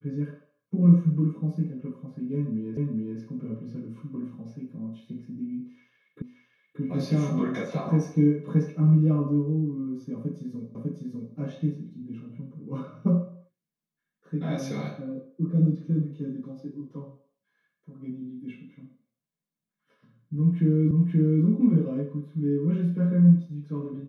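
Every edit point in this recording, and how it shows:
2.77 repeat of the last 0.42 s
6.22 repeat of the last 0.58 s
10.75 repeat of the last 0.6 s
20.91 repeat of the last 0.53 s

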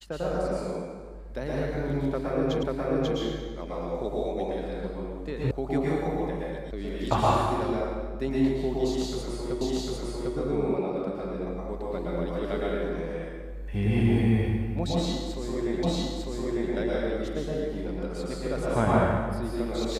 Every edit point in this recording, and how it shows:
2.63 repeat of the last 0.54 s
5.51 sound cut off
6.71 sound cut off
9.61 repeat of the last 0.75 s
15.83 repeat of the last 0.9 s

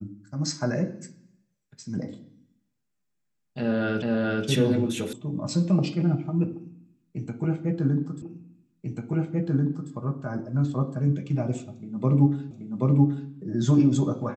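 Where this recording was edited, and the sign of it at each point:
4.02 repeat of the last 0.43 s
5.13 sound cut off
8.22 repeat of the last 1.69 s
12.51 repeat of the last 0.78 s

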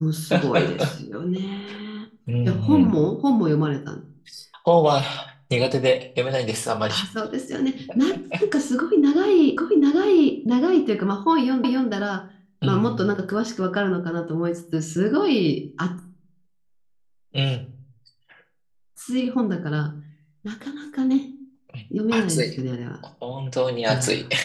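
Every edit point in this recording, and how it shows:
9.57 repeat of the last 0.79 s
11.64 repeat of the last 0.26 s

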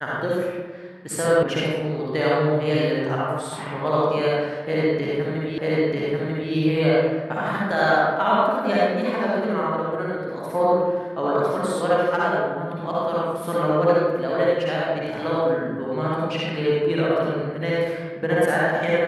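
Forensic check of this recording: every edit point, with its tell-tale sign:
1.43 sound cut off
5.58 repeat of the last 0.94 s

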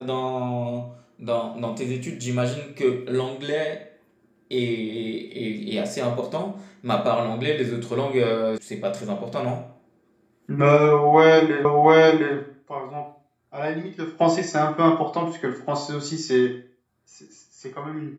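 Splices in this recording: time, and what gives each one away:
8.58 sound cut off
11.65 repeat of the last 0.71 s

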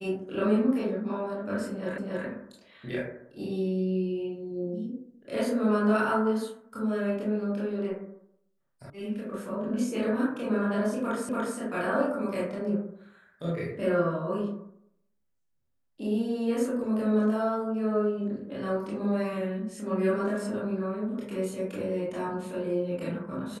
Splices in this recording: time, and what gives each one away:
1.98 repeat of the last 0.28 s
8.9 sound cut off
11.29 repeat of the last 0.29 s

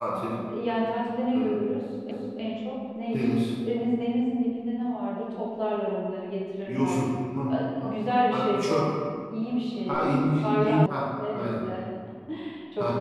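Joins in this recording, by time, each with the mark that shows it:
2.11 repeat of the last 0.3 s
10.86 sound cut off

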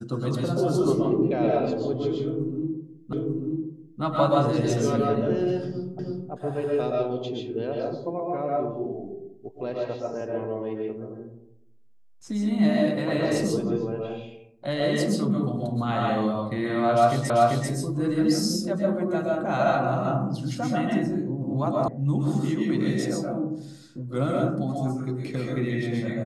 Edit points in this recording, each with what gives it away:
3.13 repeat of the last 0.89 s
5.99 repeat of the last 0.32 s
17.3 repeat of the last 0.39 s
21.88 sound cut off

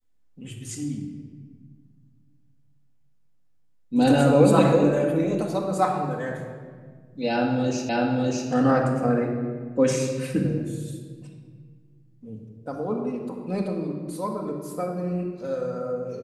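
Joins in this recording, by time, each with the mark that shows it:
7.89 repeat of the last 0.6 s

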